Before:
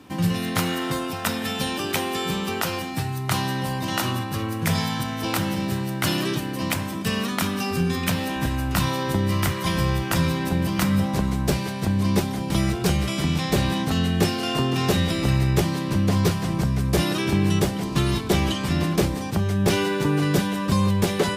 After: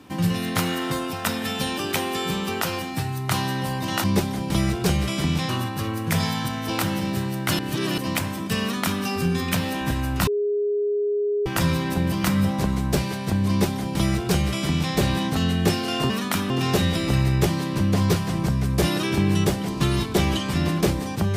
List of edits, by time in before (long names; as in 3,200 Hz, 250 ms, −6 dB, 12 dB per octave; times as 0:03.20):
0:06.14–0:06.53: reverse
0:07.17–0:07.57: duplicate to 0:14.65
0:08.82–0:10.01: beep over 412 Hz −20 dBFS
0:12.04–0:13.49: duplicate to 0:04.04